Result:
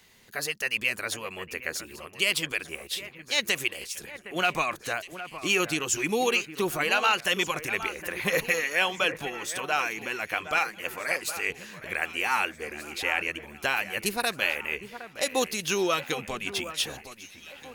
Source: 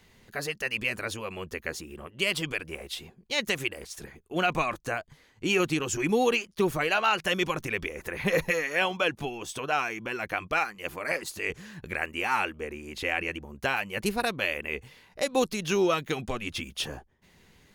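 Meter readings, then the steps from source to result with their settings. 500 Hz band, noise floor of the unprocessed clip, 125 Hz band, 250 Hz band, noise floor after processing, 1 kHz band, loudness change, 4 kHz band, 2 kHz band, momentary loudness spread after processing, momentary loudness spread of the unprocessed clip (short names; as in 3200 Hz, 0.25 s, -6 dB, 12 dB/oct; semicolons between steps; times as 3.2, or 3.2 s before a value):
-2.0 dB, -61 dBFS, -5.0 dB, -3.5 dB, -50 dBFS, 0.0 dB, +1.5 dB, +3.5 dB, +2.5 dB, 11 LU, 11 LU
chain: tilt +2 dB/oct; echo with dull and thin repeats by turns 0.764 s, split 2200 Hz, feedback 63%, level -12 dB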